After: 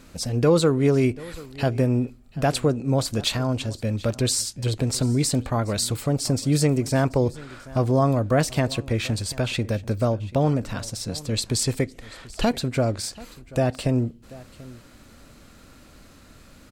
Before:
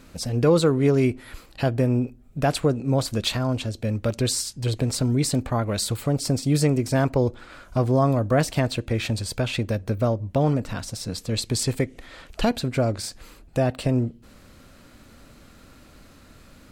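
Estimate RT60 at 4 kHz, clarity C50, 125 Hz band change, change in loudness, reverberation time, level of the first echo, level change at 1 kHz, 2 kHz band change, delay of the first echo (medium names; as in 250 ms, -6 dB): no reverb, no reverb, 0.0 dB, 0.0 dB, no reverb, -20.5 dB, 0.0 dB, 0.0 dB, 736 ms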